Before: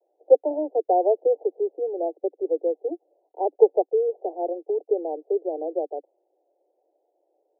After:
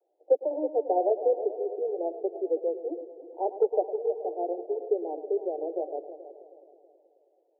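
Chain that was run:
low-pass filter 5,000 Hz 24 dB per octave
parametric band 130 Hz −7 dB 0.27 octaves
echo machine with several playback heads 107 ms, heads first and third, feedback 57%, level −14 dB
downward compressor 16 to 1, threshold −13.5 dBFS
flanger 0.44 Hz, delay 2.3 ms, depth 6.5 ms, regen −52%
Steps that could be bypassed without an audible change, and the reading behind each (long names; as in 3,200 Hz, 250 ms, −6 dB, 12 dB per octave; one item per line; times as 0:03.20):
low-pass filter 5,000 Hz: nothing at its input above 910 Hz
parametric band 130 Hz: nothing at its input below 290 Hz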